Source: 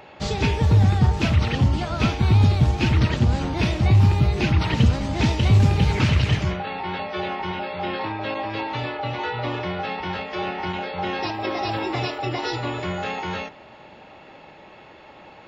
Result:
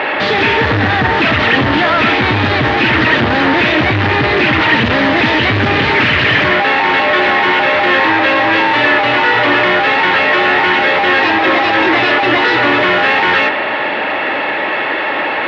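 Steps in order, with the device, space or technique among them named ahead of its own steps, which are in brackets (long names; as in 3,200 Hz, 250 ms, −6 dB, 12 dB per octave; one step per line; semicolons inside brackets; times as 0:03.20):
overdrive pedal into a guitar cabinet (mid-hump overdrive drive 39 dB, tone 4,100 Hz, clips at −6 dBFS; loudspeaker in its box 110–3,700 Hz, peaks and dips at 170 Hz −7 dB, 290 Hz +5 dB, 800 Hz −3 dB, 1,800 Hz +8 dB)
level +1 dB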